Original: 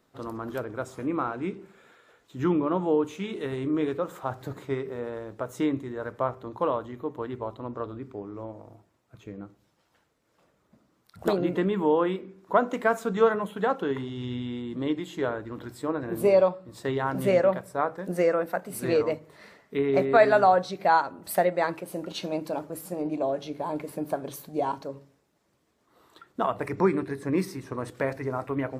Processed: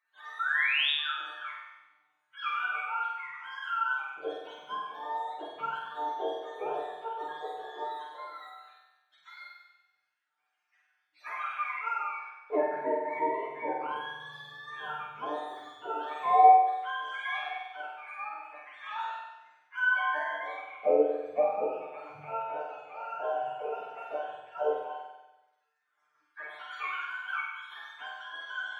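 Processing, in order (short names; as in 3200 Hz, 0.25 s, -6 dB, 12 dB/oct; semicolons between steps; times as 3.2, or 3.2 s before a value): spectrum mirrored in octaves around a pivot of 650 Hz; LFO high-pass square 0.12 Hz 450–1500 Hz; painted sound rise, 0.39–0.91, 1300–3800 Hz -22 dBFS; resonator 150 Hz, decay 0.4 s, harmonics all, mix 90%; on a send: flutter echo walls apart 8.2 m, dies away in 1 s; on the sum: gain +3 dB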